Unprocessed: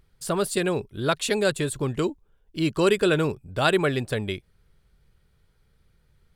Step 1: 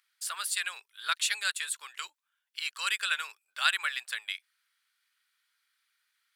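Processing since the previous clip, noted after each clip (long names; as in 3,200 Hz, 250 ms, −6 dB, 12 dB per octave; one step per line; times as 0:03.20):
high-pass filter 1,400 Hz 24 dB per octave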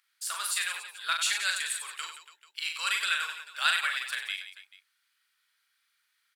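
in parallel at −12 dB: soft clipping −20 dBFS, distortion −14 dB
on the sum: reverse bouncing-ball delay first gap 40 ms, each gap 1.4×, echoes 5
level −2 dB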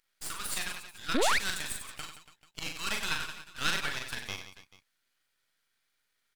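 sound drawn into the spectrogram rise, 0:01.14–0:01.39, 210–2,600 Hz −22 dBFS
half-wave rectification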